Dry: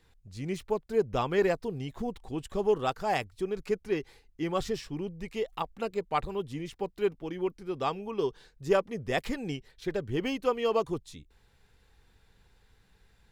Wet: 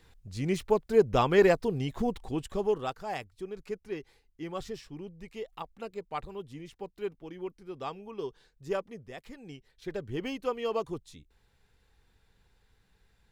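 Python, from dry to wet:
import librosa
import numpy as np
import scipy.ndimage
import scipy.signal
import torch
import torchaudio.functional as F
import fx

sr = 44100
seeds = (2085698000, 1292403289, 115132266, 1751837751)

y = fx.gain(x, sr, db=fx.line((2.2, 4.5), (3.06, -7.0), (8.91, -7.0), (9.17, -16.0), (9.96, -4.0)))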